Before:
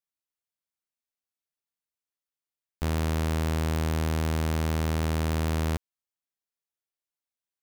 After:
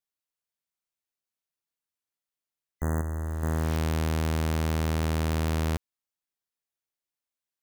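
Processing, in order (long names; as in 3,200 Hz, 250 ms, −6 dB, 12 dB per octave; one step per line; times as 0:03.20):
0:03.01–0:03.43: hard clipping −29.5 dBFS, distortion −15 dB
0:02.74–0:03.73: healed spectral selection 2,000–6,100 Hz both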